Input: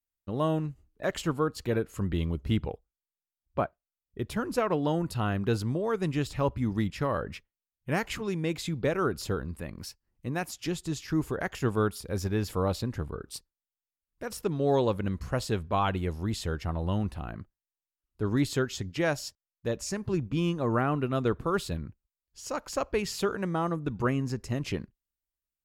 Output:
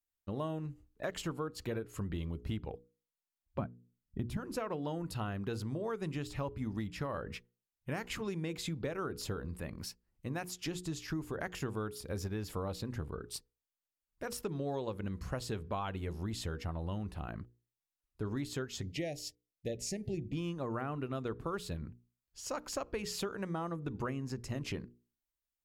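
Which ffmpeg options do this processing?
-filter_complex "[0:a]asettb=1/sr,asplit=3[a][b][c];[a]atrim=end=3.594[d];[b]atrim=start=3.59:end=4.37,asetpts=PTS-STARTPTS,afade=t=in:d=0.004:c=qsin,afade=t=out:st=0.776:d=0.004:c=qsin,lowshelf=f=320:t=q:w=1.5:g=11[e];[c]atrim=start=4.366[f];[d][e]acrossfade=d=0.004:c1=hsin:c2=qsin[g];[g][f]acrossfade=d=0.004:c1=qsin:c2=hsin,bandreject=f=60:t=h:w=6,bandreject=f=120:t=h:w=6,bandreject=f=180:t=h:w=6,bandreject=f=240:t=h:w=6,bandreject=f=300:t=h:w=6,bandreject=f=360:t=h:w=6,bandreject=f=420:t=h:w=6,bandreject=f=480:t=h:w=6,acompressor=threshold=-32dB:ratio=6,asettb=1/sr,asplit=3[h][i][j];[h]atrim=end=18.824[k];[i]atrim=start=18.82:end=20.33,asetpts=PTS-STARTPTS,afade=t=in:d=0.004:c=qsin,afade=t=out:st=1.506:d=0.004:c=qsin,asuperstop=centerf=1200:order=12:qfactor=1.1[l];[j]atrim=start=20.326[m];[k][l]acrossfade=d=0.004:c1=hsin:c2=qsin[n];[n][m]acrossfade=d=0.004:c1=qsin:c2=hsin,volume=-2dB"

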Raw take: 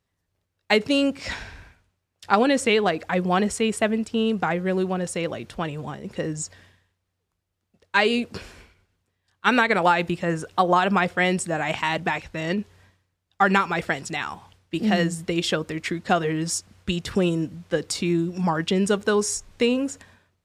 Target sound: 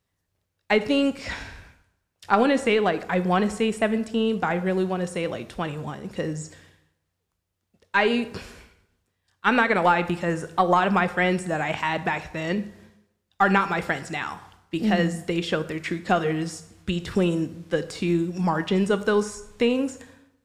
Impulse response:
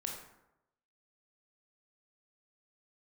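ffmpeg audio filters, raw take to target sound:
-filter_complex "[0:a]acrossover=split=3000[a][b];[b]acompressor=threshold=-40dB:ratio=4:attack=1:release=60[c];[a][c]amix=inputs=2:normalize=0,aeval=exprs='0.668*(cos(1*acos(clip(val(0)/0.668,-1,1)))-cos(1*PI/2))+0.0188*(cos(4*acos(clip(val(0)/0.668,-1,1)))-cos(4*PI/2))':c=same,asplit=2[d][e];[1:a]atrim=start_sample=2205,highshelf=f=5.2k:g=10.5[f];[e][f]afir=irnorm=-1:irlink=0,volume=-8.5dB[g];[d][g]amix=inputs=2:normalize=0,volume=-2.5dB"

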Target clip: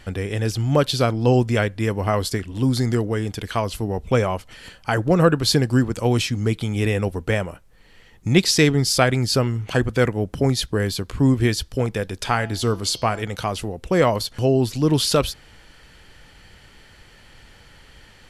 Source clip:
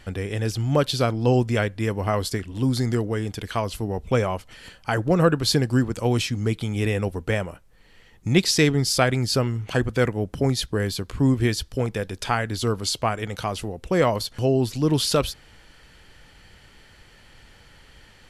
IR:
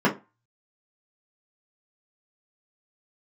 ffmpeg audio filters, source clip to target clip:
-filter_complex "[0:a]asplit=3[a][b][c];[a]afade=t=out:st=12.27:d=0.02[d];[b]bandreject=f=167.9:t=h:w=4,bandreject=f=335.8:t=h:w=4,bandreject=f=503.7:t=h:w=4,bandreject=f=671.6:t=h:w=4,bandreject=f=839.5:t=h:w=4,bandreject=f=1.0074k:t=h:w=4,bandreject=f=1.1753k:t=h:w=4,bandreject=f=1.3432k:t=h:w=4,bandreject=f=1.5111k:t=h:w=4,bandreject=f=1.679k:t=h:w=4,bandreject=f=1.8469k:t=h:w=4,bandreject=f=2.0148k:t=h:w=4,bandreject=f=2.1827k:t=h:w=4,bandreject=f=2.3506k:t=h:w=4,bandreject=f=2.5185k:t=h:w=4,bandreject=f=2.6864k:t=h:w=4,bandreject=f=2.8543k:t=h:w=4,bandreject=f=3.0222k:t=h:w=4,bandreject=f=3.1901k:t=h:w=4,bandreject=f=3.358k:t=h:w=4,bandreject=f=3.5259k:t=h:w=4,bandreject=f=3.6938k:t=h:w=4,bandreject=f=3.8617k:t=h:w=4,bandreject=f=4.0296k:t=h:w=4,bandreject=f=4.1975k:t=h:w=4,bandreject=f=4.3654k:t=h:w=4,bandreject=f=4.5333k:t=h:w=4,bandreject=f=4.7012k:t=h:w=4,bandreject=f=4.8691k:t=h:w=4,bandreject=f=5.037k:t=h:w=4,bandreject=f=5.2049k:t=h:w=4,bandreject=f=5.3728k:t=h:w=4,bandreject=f=5.5407k:t=h:w=4,bandreject=f=5.7086k:t=h:w=4,bandreject=f=5.8765k:t=h:w=4,bandreject=f=6.0444k:t=h:w=4,bandreject=f=6.2123k:t=h:w=4,bandreject=f=6.3802k:t=h:w=4,afade=t=in:st=12.27:d=0.02,afade=t=out:st=13.22:d=0.02[e];[c]afade=t=in:st=13.22:d=0.02[f];[d][e][f]amix=inputs=3:normalize=0,volume=2.5dB"

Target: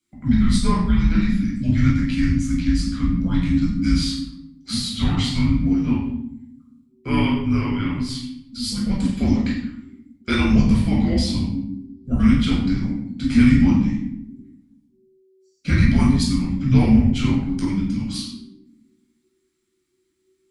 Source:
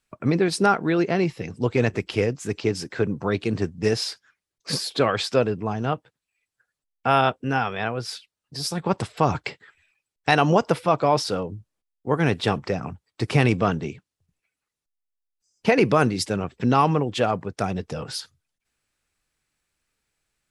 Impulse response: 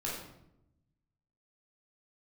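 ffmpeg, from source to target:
-filter_complex "[0:a]equalizer=f=1.1k:w=0.88:g=-14.5[a];[1:a]atrim=start_sample=2205[b];[a][b]afir=irnorm=-1:irlink=0,afreqshift=-380,volume=1.5dB"

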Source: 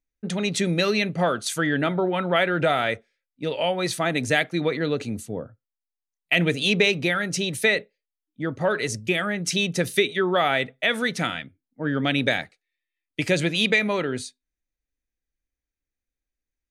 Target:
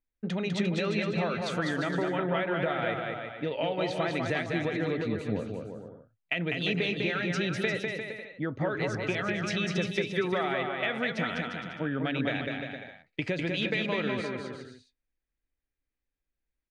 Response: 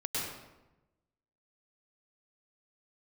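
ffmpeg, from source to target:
-filter_complex "[0:a]lowpass=3.1k,acompressor=threshold=-26dB:ratio=6,asplit=2[a][b];[b]aecho=0:1:200|350|462.5|546.9|610.2:0.631|0.398|0.251|0.158|0.1[c];[a][c]amix=inputs=2:normalize=0,volume=-1.5dB"

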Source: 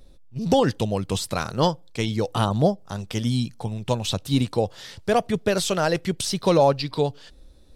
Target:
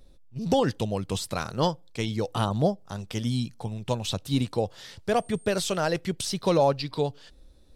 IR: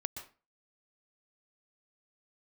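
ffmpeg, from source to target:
-filter_complex "[0:a]asettb=1/sr,asplit=3[a][b][c];[a]atrim=end=5.144[d];[b]atrim=start=5.14:end=5.77,asetpts=PTS-STARTPTS,afade=t=in:d=0.004:c=qsin,afade=t=out:st=0.626:d=0.004:c=qsin,aeval=exprs='val(0)+0.00398*sin(2*PI*8600*n/s)':c=same[e];[c]atrim=start=5.766[f];[d][e]acrossfade=d=0.004:c1=hsin:c2=qsin[g];[g][f]acrossfade=d=0.004:c1=qsin:c2=hsin,volume=-4dB"

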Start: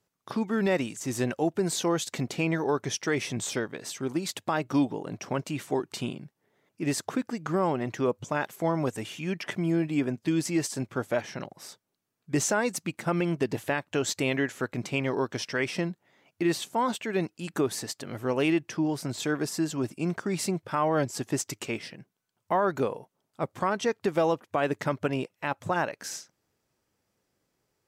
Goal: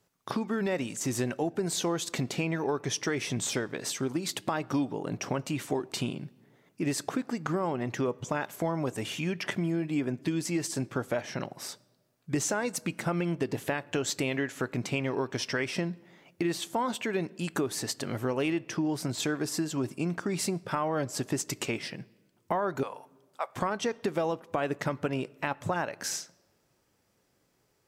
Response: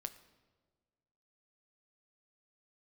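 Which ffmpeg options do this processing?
-filter_complex "[0:a]asettb=1/sr,asplit=3[a][b][c];[a]atrim=end=22.834[d];[b]atrim=start=22.83:end=23.56,asetpts=PTS-STARTPTS,afade=t=in:d=0.004:c=qsin,afade=t=out:st=0.726:d=0.004:c=qsin,highpass=f=680:w=0.5412,highpass=f=680:w=1.3066[e];[c]atrim=start=23.556[f];[d][e]acrossfade=d=0.004:c1=hsin:c2=qsin[g];[g][f]acrossfade=d=0.004:c1=qsin:c2=hsin,acompressor=threshold=-34dB:ratio=3,asplit=2[h][i];[1:a]atrim=start_sample=2205[j];[i][j]afir=irnorm=-1:irlink=0,volume=-2.5dB[k];[h][k]amix=inputs=2:normalize=0,volume=1.5dB"

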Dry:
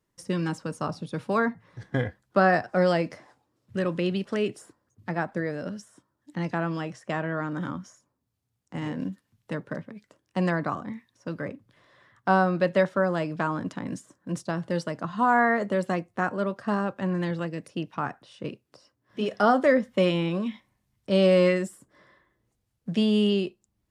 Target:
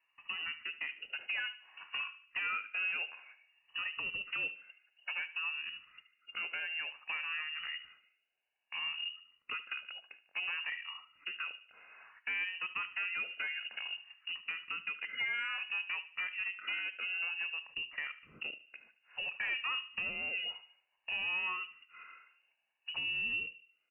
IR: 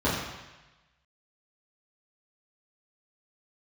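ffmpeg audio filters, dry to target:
-filter_complex "[0:a]afftfilt=real='re*pow(10,12/40*sin(2*PI*(1.4*log(max(b,1)*sr/1024/100)/log(2)-(-0.57)*(pts-256)/sr)))':imag='im*pow(10,12/40*sin(2*PI*(1.4*log(max(b,1)*sr/1024/100)/log(2)-(-0.57)*(pts-256)/sr)))':win_size=1024:overlap=0.75,highpass=f=260:w=0.5412,highpass=f=260:w=1.3066,acompressor=threshold=-44dB:ratio=2.5,volume=33.5dB,asoftclip=hard,volume=-33.5dB,asplit=2[a][b];[b]adelay=74,lowpass=f=2k:p=1,volume=-14dB,asplit=2[c][d];[d]adelay=74,lowpass=f=2k:p=1,volume=0.45,asplit=2[e][f];[f]adelay=74,lowpass=f=2k:p=1,volume=0.45,asplit=2[g][h];[h]adelay=74,lowpass=f=2k:p=1,volume=0.45[i];[a][c][e][g][i]amix=inputs=5:normalize=0,lowpass=f=2.6k:t=q:w=0.5098,lowpass=f=2.6k:t=q:w=0.6013,lowpass=f=2.6k:t=q:w=0.9,lowpass=f=2.6k:t=q:w=2.563,afreqshift=-3100,volume=2.5dB"

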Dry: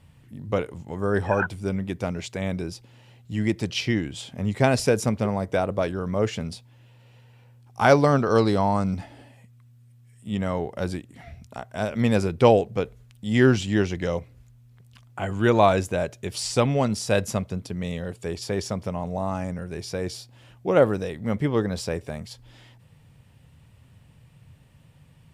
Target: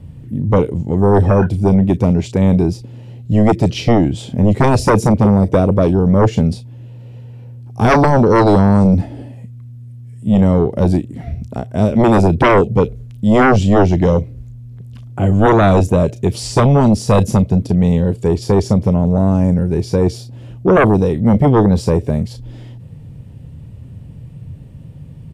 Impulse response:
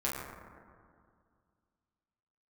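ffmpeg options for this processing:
-filter_complex "[0:a]acrossover=split=510|2300[a][b][c];[a]aeval=exprs='0.355*sin(PI/2*4.47*val(0)/0.355)':c=same[d];[b]acompressor=threshold=-34dB:ratio=6[e];[c]asplit=2[f][g];[g]adelay=34,volume=-6dB[h];[f][h]amix=inputs=2:normalize=0[i];[d][e][i]amix=inputs=3:normalize=0,volume=2.5dB"

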